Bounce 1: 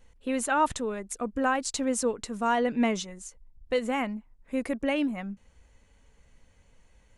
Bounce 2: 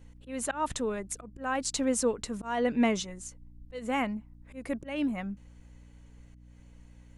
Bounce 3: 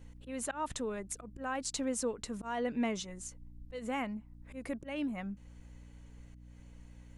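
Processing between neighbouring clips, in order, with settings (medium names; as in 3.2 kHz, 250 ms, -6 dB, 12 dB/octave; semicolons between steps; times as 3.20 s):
slow attack 243 ms; hum 60 Hz, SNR 20 dB
compression 1.5:1, threshold -43 dBFS, peak gain reduction 8 dB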